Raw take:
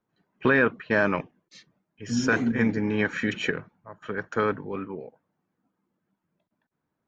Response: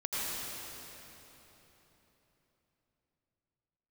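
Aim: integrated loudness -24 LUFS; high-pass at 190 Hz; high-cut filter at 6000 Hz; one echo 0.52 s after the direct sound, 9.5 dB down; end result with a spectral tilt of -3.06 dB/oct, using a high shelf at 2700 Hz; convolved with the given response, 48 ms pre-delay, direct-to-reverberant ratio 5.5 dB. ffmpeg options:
-filter_complex "[0:a]highpass=190,lowpass=6k,highshelf=f=2.7k:g=4.5,aecho=1:1:520:0.335,asplit=2[a][b];[1:a]atrim=start_sample=2205,adelay=48[c];[b][c]afir=irnorm=-1:irlink=0,volume=-12.5dB[d];[a][d]amix=inputs=2:normalize=0,volume=1.5dB"

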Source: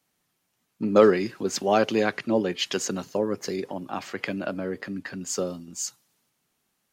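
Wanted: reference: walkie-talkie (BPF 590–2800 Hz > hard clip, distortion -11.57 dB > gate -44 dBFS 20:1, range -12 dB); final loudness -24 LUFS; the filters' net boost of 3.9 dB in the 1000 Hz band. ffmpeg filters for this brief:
-af "highpass=590,lowpass=2.8k,equalizer=f=1k:t=o:g=7,asoftclip=type=hard:threshold=-15.5dB,agate=range=-12dB:threshold=-44dB:ratio=20,volume=5.5dB"

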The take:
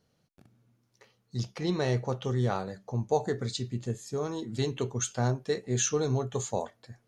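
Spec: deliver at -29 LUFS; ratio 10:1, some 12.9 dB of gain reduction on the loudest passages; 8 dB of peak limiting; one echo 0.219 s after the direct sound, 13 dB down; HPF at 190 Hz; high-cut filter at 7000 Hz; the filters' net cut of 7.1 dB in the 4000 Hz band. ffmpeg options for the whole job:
-af "highpass=190,lowpass=7k,equalizer=f=4k:t=o:g=-8,acompressor=threshold=-35dB:ratio=10,alimiter=level_in=6.5dB:limit=-24dB:level=0:latency=1,volume=-6.5dB,aecho=1:1:219:0.224,volume=13.5dB"

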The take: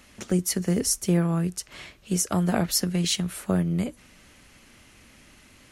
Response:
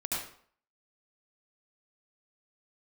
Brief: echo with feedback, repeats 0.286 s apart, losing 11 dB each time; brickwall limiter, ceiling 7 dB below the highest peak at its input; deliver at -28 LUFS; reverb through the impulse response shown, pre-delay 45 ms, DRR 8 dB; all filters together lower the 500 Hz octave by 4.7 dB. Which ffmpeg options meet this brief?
-filter_complex "[0:a]equalizer=f=500:t=o:g=-7,alimiter=limit=-17.5dB:level=0:latency=1,aecho=1:1:286|572|858:0.282|0.0789|0.0221,asplit=2[a][b];[1:a]atrim=start_sample=2205,adelay=45[c];[b][c]afir=irnorm=-1:irlink=0,volume=-13dB[d];[a][d]amix=inputs=2:normalize=0,volume=-1.5dB"

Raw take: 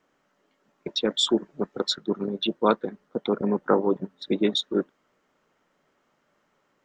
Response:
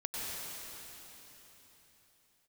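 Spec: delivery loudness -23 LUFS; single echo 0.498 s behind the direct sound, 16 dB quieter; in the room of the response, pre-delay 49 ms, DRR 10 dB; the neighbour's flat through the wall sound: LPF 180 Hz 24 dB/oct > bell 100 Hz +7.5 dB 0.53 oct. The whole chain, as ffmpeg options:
-filter_complex "[0:a]aecho=1:1:498:0.158,asplit=2[a][b];[1:a]atrim=start_sample=2205,adelay=49[c];[b][c]afir=irnorm=-1:irlink=0,volume=-14dB[d];[a][d]amix=inputs=2:normalize=0,lowpass=f=180:w=0.5412,lowpass=f=180:w=1.3066,equalizer=f=100:t=o:w=0.53:g=7.5,volume=16dB"

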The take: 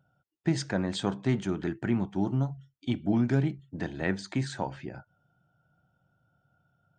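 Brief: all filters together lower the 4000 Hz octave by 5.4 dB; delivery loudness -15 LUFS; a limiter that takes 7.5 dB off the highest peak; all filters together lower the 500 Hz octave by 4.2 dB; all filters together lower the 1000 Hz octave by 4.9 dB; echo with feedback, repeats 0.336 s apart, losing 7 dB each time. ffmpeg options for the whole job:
-af "equalizer=f=500:t=o:g=-5.5,equalizer=f=1k:t=o:g=-4,equalizer=f=4k:t=o:g=-6.5,alimiter=limit=-22.5dB:level=0:latency=1,aecho=1:1:336|672|1008|1344|1680:0.447|0.201|0.0905|0.0407|0.0183,volume=19dB"

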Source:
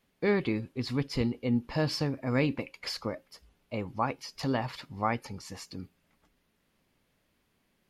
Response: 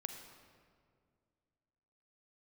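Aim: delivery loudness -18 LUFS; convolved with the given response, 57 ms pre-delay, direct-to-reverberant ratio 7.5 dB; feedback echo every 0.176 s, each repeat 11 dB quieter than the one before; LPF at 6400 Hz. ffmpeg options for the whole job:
-filter_complex "[0:a]lowpass=6.4k,aecho=1:1:176|352|528:0.282|0.0789|0.0221,asplit=2[a][b];[1:a]atrim=start_sample=2205,adelay=57[c];[b][c]afir=irnorm=-1:irlink=0,volume=-5.5dB[d];[a][d]amix=inputs=2:normalize=0,volume=13dB"

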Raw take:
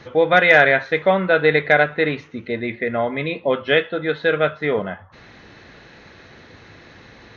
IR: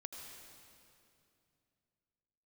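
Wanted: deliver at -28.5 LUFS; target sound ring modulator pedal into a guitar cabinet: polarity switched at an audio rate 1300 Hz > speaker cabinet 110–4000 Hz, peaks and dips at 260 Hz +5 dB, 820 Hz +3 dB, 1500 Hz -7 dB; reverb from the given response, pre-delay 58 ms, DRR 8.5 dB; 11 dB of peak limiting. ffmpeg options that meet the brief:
-filter_complex "[0:a]alimiter=limit=-12.5dB:level=0:latency=1,asplit=2[a][b];[1:a]atrim=start_sample=2205,adelay=58[c];[b][c]afir=irnorm=-1:irlink=0,volume=-5dB[d];[a][d]amix=inputs=2:normalize=0,aeval=exprs='val(0)*sgn(sin(2*PI*1300*n/s))':c=same,highpass=110,equalizer=f=260:t=q:w=4:g=5,equalizer=f=820:t=q:w=4:g=3,equalizer=f=1.5k:t=q:w=4:g=-7,lowpass=f=4k:w=0.5412,lowpass=f=4k:w=1.3066,volume=-5.5dB"

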